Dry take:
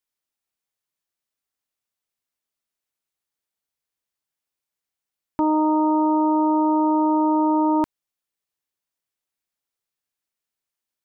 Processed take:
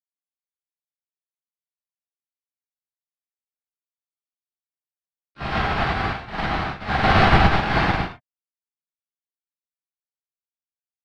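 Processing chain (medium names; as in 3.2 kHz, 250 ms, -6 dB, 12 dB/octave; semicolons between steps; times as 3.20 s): Chebyshev low-pass 1.2 kHz, order 4; noise-vocoded speech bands 6; ring modulator 430 Hz; harmony voices +7 st -5 dB, +12 st -4 dB; trance gate "xxx.xx.x..x.." 86 bpm -12 dB; gated-style reverb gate 360 ms flat, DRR -7.5 dB; upward expansion 2.5:1, over -26 dBFS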